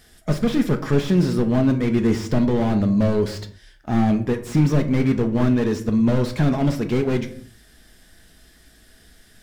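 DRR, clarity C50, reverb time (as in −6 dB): 6.0 dB, 13.0 dB, non-exponential decay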